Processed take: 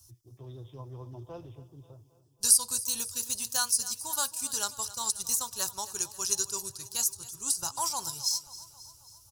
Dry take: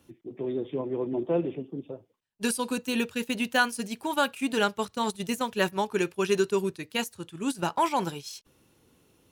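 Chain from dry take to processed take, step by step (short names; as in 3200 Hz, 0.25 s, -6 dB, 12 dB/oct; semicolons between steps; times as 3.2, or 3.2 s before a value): EQ curve 120 Hz 0 dB, 180 Hz -28 dB, 460 Hz -25 dB, 1100 Hz -12 dB, 2200 Hz -27 dB, 3500 Hz -12 dB, 5100 Hz +9 dB, 9700 Hz +7 dB; on a send: feedback echo 0.269 s, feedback 59%, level -17 dB; on the sum: gain +5.5 dB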